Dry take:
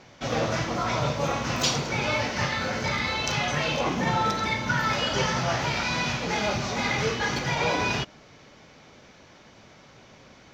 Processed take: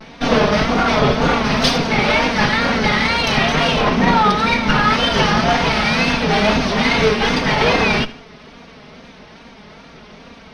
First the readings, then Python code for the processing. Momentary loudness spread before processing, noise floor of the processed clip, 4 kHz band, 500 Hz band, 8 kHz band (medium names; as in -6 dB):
3 LU, -42 dBFS, +10.0 dB, +11.0 dB, +2.5 dB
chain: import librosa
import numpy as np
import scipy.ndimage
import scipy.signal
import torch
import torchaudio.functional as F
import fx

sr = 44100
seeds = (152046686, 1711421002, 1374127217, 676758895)

p1 = fx.lower_of_two(x, sr, delay_ms=4.5)
p2 = fx.low_shelf(p1, sr, hz=370.0, db=4.0)
p3 = fx.rider(p2, sr, range_db=10, speed_s=0.5)
p4 = p2 + F.gain(torch.from_numpy(p3), 1.0).numpy()
p5 = fx.wow_flutter(p4, sr, seeds[0], rate_hz=2.1, depth_cents=110.0)
p6 = scipy.signal.savgol_filter(p5, 15, 4, mode='constant')
p7 = p6 + fx.echo_feedback(p6, sr, ms=77, feedback_pct=37, wet_db=-18.0, dry=0)
y = F.gain(torch.from_numpy(p7), 5.0).numpy()